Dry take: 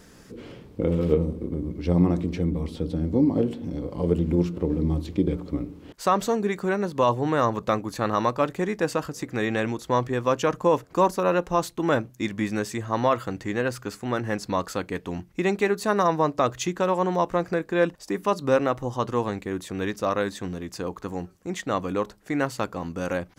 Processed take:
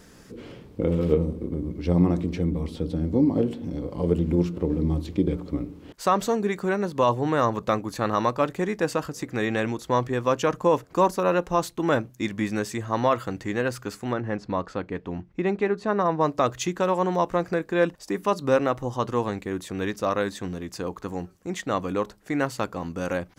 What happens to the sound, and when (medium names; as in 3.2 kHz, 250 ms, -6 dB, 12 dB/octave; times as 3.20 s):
14.13–16.21 s: tape spacing loss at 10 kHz 23 dB